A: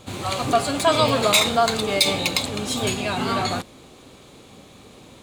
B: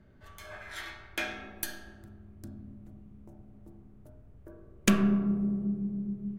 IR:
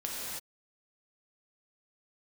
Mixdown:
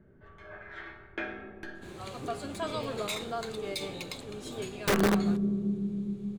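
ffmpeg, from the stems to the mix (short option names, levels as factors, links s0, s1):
-filter_complex "[0:a]adelay=1750,volume=0.112[s0];[1:a]lowpass=2200,aeval=exprs='(mod(9.44*val(0)+1,2)-1)/9.44':c=same,volume=0.668[s1];[s0][s1]amix=inputs=2:normalize=0,equalizer=f=160:t=o:w=0.67:g=6,equalizer=f=400:t=o:w=0.67:g=10,equalizer=f=1600:t=o:w=0.67:g=4"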